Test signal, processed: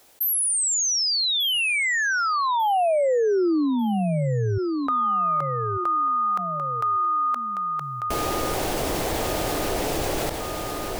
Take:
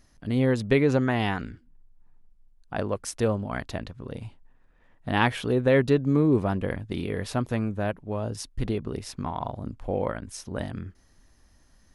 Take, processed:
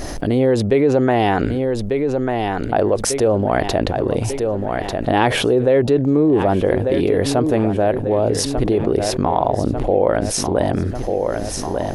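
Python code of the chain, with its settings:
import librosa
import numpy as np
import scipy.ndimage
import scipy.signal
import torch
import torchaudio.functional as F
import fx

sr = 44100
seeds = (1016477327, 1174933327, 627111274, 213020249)

y = fx.band_shelf(x, sr, hz=500.0, db=9.0, octaves=1.7)
y = fx.echo_feedback(y, sr, ms=1194, feedback_pct=34, wet_db=-15.0)
y = fx.env_flatten(y, sr, amount_pct=70)
y = y * librosa.db_to_amplitude(-3.0)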